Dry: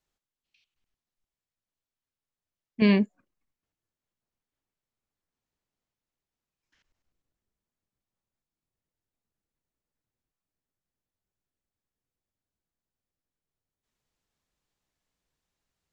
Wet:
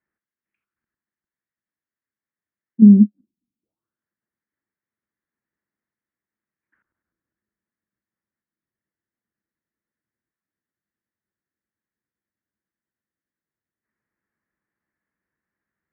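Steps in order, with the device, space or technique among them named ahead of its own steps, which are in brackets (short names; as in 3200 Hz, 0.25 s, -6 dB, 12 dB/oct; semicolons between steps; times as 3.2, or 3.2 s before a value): envelope filter bass rig (envelope low-pass 250–1900 Hz down, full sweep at -51 dBFS; speaker cabinet 76–2300 Hz, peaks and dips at 210 Hz +8 dB, 330 Hz +7 dB, 750 Hz -4 dB); gain -3 dB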